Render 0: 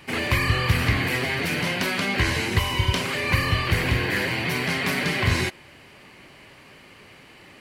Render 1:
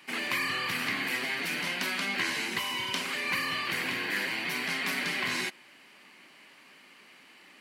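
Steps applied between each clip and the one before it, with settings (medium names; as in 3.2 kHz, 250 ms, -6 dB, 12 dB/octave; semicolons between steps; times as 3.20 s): high-pass 220 Hz 24 dB/octave; peaking EQ 470 Hz -8.5 dB 1.5 oct; trim -4.5 dB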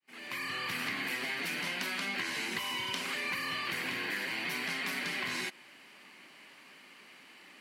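fade-in on the opening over 0.92 s; compression, threshold -32 dBFS, peak gain reduction 6.5 dB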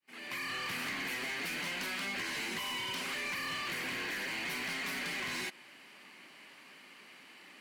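overload inside the chain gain 34 dB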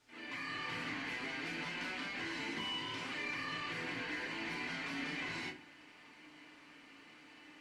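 in parallel at -11.5 dB: word length cut 8-bit, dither triangular; on the sum: distance through air 96 m; FDN reverb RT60 0.37 s, low-frequency decay 1.6×, high-frequency decay 0.65×, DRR -2 dB; trim -8.5 dB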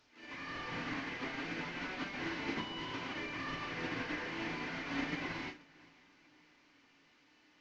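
one-bit delta coder 32 kbps, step -52 dBFS; echo that smears into a reverb 525 ms, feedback 54%, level -11.5 dB; upward expansion 2.5:1, over -52 dBFS; trim +6.5 dB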